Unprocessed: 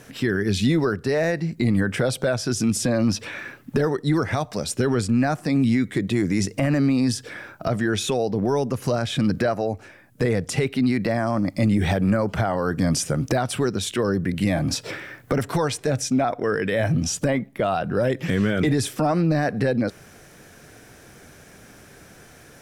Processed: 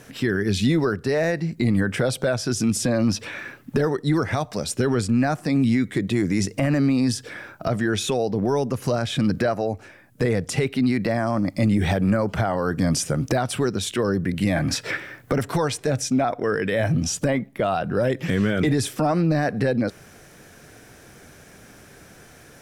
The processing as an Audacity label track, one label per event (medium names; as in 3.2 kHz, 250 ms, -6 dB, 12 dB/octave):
14.560000	14.970000	peaking EQ 1.8 kHz +10 dB 0.86 oct